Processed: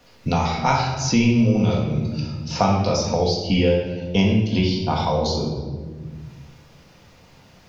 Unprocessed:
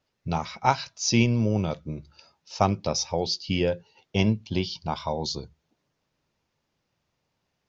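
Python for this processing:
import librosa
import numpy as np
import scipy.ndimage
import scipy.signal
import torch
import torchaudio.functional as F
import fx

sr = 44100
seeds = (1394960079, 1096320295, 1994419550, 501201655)

y = fx.room_shoebox(x, sr, seeds[0], volume_m3=410.0, walls='mixed', distance_m=1.8)
y = fx.band_squash(y, sr, depth_pct=70)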